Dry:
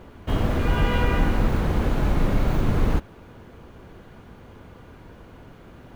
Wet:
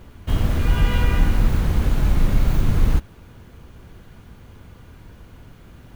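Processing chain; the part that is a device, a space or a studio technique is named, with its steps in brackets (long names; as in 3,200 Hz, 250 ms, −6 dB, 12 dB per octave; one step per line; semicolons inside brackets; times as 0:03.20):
smiley-face EQ (low-shelf EQ 190 Hz +5.5 dB; parametric band 500 Hz −5.5 dB 2.8 octaves; high-shelf EQ 5,000 Hz +8 dB)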